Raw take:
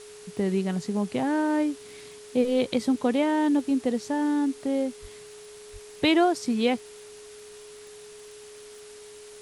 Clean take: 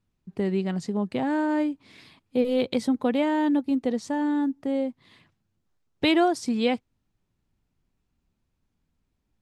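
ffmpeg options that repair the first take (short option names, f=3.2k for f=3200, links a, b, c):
-filter_complex "[0:a]adeclick=t=4,bandreject=f=420:w=30,asplit=3[a][b][c];[a]afade=t=out:st=5.01:d=0.02[d];[b]highpass=f=140:w=0.5412,highpass=f=140:w=1.3066,afade=t=in:st=5.01:d=0.02,afade=t=out:st=5.13:d=0.02[e];[c]afade=t=in:st=5.13:d=0.02[f];[d][e][f]amix=inputs=3:normalize=0,asplit=3[g][h][i];[g]afade=t=out:st=5.72:d=0.02[j];[h]highpass=f=140:w=0.5412,highpass=f=140:w=1.3066,afade=t=in:st=5.72:d=0.02,afade=t=out:st=5.84:d=0.02[k];[i]afade=t=in:st=5.84:d=0.02[l];[j][k][l]amix=inputs=3:normalize=0,afftdn=nr=30:nf=-46"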